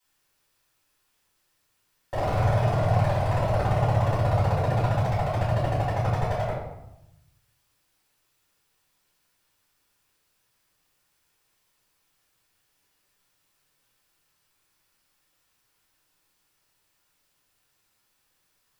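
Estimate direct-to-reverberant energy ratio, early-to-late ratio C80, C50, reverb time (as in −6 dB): −11.0 dB, 5.5 dB, 2.0 dB, 0.85 s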